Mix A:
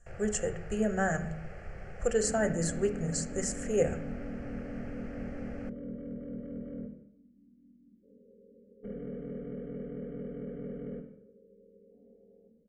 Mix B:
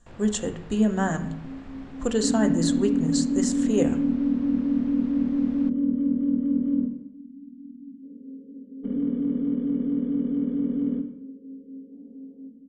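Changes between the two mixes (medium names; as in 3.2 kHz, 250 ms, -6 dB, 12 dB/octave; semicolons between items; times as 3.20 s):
first sound -3.0 dB; master: remove static phaser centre 1 kHz, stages 6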